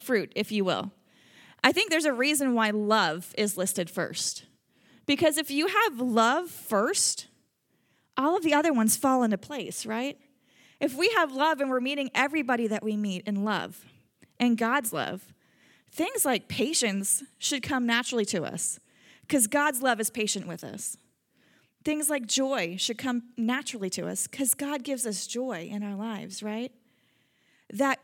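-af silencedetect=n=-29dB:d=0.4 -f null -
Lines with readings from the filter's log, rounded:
silence_start: 0.86
silence_end: 1.64 | silence_duration: 0.78
silence_start: 4.37
silence_end: 5.09 | silence_duration: 0.72
silence_start: 7.20
silence_end: 8.18 | silence_duration: 0.97
silence_start: 10.11
silence_end: 10.81 | silence_duration: 0.70
silence_start: 13.66
silence_end: 14.40 | silence_duration: 0.74
silence_start: 15.15
silence_end: 15.98 | silence_duration: 0.83
silence_start: 18.73
silence_end: 19.30 | silence_duration: 0.57
silence_start: 20.91
silence_end: 21.86 | silence_duration: 0.95
silence_start: 26.66
silence_end: 27.70 | silence_duration: 1.04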